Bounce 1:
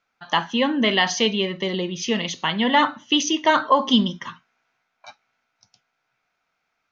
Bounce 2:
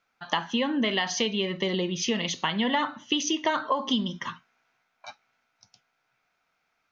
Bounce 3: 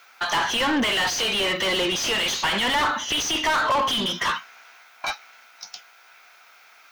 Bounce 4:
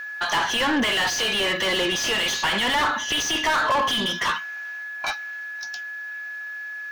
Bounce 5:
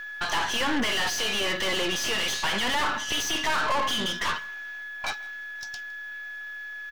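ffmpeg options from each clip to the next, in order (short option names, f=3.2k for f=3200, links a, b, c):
-af "acompressor=threshold=-23dB:ratio=5"
-filter_complex "[0:a]aemphasis=mode=production:type=riaa,asplit=2[a][b];[b]highpass=f=720:p=1,volume=37dB,asoftclip=type=tanh:threshold=-5.5dB[c];[a][c]amix=inputs=2:normalize=0,lowpass=f=2.1k:p=1,volume=-6dB,volume=-7dB"
-af "aeval=exprs='val(0)+0.0282*sin(2*PI*1700*n/s)':c=same"
-af "aeval=exprs='(tanh(11.2*val(0)+0.7)-tanh(0.7))/11.2':c=same,aecho=1:1:161:0.0668"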